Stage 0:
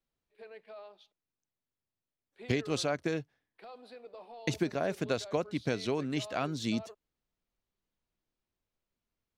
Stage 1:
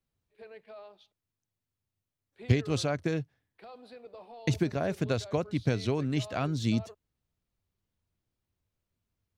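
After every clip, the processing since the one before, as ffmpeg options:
-af "equalizer=f=94:w=0.95:g=14"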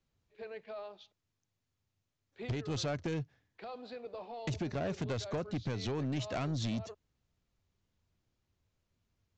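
-af "acompressor=threshold=0.0251:ratio=4,aresample=16000,asoftclip=type=tanh:threshold=0.02,aresample=44100,volume=1.58"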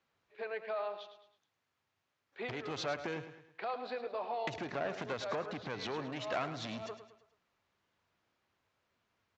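-af "acompressor=threshold=0.0112:ratio=6,bandpass=f=1300:t=q:w=0.73:csg=0,aecho=1:1:107|214|321|428:0.282|0.121|0.0521|0.0224,volume=3.35"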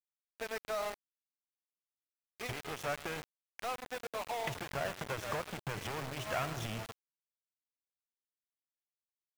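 -af "asuperstop=centerf=4300:order=12:qfactor=2.3,asubboost=boost=11:cutoff=85,aeval=exprs='val(0)*gte(abs(val(0)),0.0119)':c=same,volume=1.19"

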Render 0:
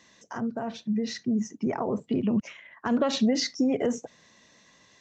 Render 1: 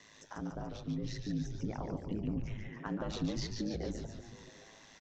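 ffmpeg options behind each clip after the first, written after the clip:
-filter_complex "[0:a]acrossover=split=140[s0][s1];[s1]acompressor=threshold=0.00316:ratio=2[s2];[s0][s2]amix=inputs=2:normalize=0,aeval=exprs='val(0)*sin(2*PI*53*n/s)':c=same,asplit=2[s3][s4];[s4]asplit=8[s5][s6][s7][s8][s9][s10][s11][s12];[s5]adelay=144,afreqshift=-140,volume=0.562[s13];[s6]adelay=288,afreqshift=-280,volume=0.339[s14];[s7]adelay=432,afreqshift=-420,volume=0.202[s15];[s8]adelay=576,afreqshift=-560,volume=0.122[s16];[s9]adelay=720,afreqshift=-700,volume=0.0733[s17];[s10]adelay=864,afreqshift=-840,volume=0.0437[s18];[s11]adelay=1008,afreqshift=-980,volume=0.0263[s19];[s12]adelay=1152,afreqshift=-1120,volume=0.0157[s20];[s13][s14][s15][s16][s17][s18][s19][s20]amix=inputs=8:normalize=0[s21];[s3][s21]amix=inputs=2:normalize=0,volume=1.26"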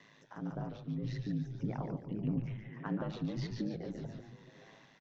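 -af "lowpass=3400,tremolo=f=1.7:d=0.42,lowshelf=f=100:t=q:w=3:g=-8"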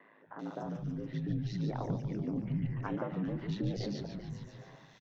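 -filter_complex "[0:a]acrossover=split=220|2100[s0][s1][s2];[s0]adelay=260[s3];[s2]adelay=390[s4];[s3][s1][s4]amix=inputs=3:normalize=0,volume=1.58"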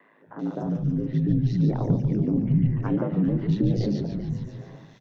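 -filter_complex "[0:a]bandreject=f=64.33:t=h:w=4,bandreject=f=128.66:t=h:w=4,bandreject=f=192.99:t=h:w=4,bandreject=f=257.32:t=h:w=4,bandreject=f=321.65:t=h:w=4,bandreject=f=385.98:t=h:w=4,bandreject=f=450.31:t=h:w=4,bandreject=f=514.64:t=h:w=4,bandreject=f=578.97:t=h:w=4,bandreject=f=643.3:t=h:w=4,bandreject=f=707.63:t=h:w=4,bandreject=f=771.96:t=h:w=4,acrossover=split=480[s0][s1];[s0]dynaudnorm=f=170:g=3:m=3.55[s2];[s2][s1]amix=inputs=2:normalize=0,volume=1.33"

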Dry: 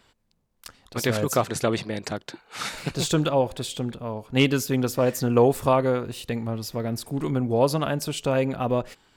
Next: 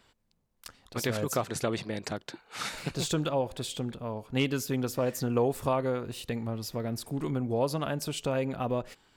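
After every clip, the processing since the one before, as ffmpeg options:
-af "acompressor=threshold=0.0447:ratio=1.5,volume=0.668"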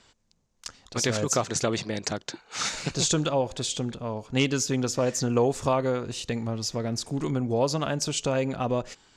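-af "lowpass=f=6600:t=q:w=3,volume=1.5"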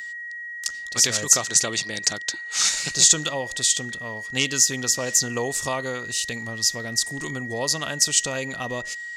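-af "aeval=exprs='val(0)+0.02*sin(2*PI*1900*n/s)':c=same,crystalizer=i=8:c=0,volume=0.501"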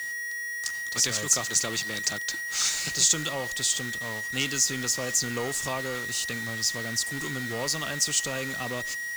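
-filter_complex "[0:a]aeval=exprs='val(0)+0.5*0.0596*sgn(val(0))':c=same,acrossover=split=100|500|2400[s0][s1][s2][s3];[s1]acrusher=samples=26:mix=1:aa=0.000001[s4];[s0][s4][s2][s3]amix=inputs=4:normalize=0,volume=0.447"

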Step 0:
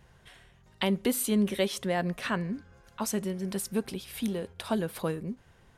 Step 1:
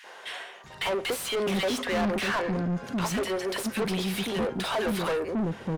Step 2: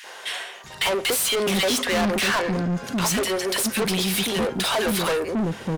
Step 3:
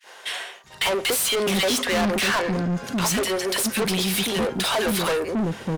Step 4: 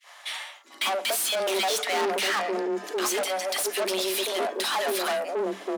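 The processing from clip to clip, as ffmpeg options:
-filter_complex "[0:a]acrossover=split=340|1500[s0][s1][s2];[s1]adelay=40[s3];[s0]adelay=640[s4];[s4][s3][s2]amix=inputs=3:normalize=0,asplit=2[s5][s6];[s6]highpass=f=720:p=1,volume=50.1,asoftclip=type=tanh:threshold=0.178[s7];[s5][s7]amix=inputs=2:normalize=0,lowpass=f=2500:p=1,volume=0.501,volume=0.596"
-af "highshelf=f=3400:g=10,volume=1.58"
-af "agate=range=0.0224:threshold=0.0178:ratio=3:detection=peak"
-af "afreqshift=190,volume=0.631"

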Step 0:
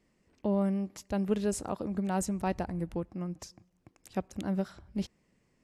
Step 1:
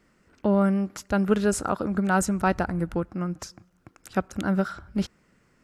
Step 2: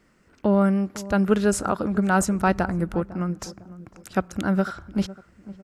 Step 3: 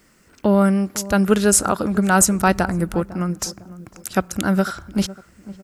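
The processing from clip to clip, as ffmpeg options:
-af "equalizer=f=1400:t=o:w=0.42:g=13.5,volume=2.24"
-filter_complex "[0:a]asplit=2[s0][s1];[s1]adelay=503,lowpass=f=860:p=1,volume=0.158,asplit=2[s2][s3];[s3]adelay=503,lowpass=f=860:p=1,volume=0.4,asplit=2[s4][s5];[s5]adelay=503,lowpass=f=860:p=1,volume=0.4,asplit=2[s6][s7];[s7]adelay=503,lowpass=f=860:p=1,volume=0.4[s8];[s0][s2][s4][s6][s8]amix=inputs=5:normalize=0,volume=1.26"
-af "crystalizer=i=2.5:c=0,volume=1.5"

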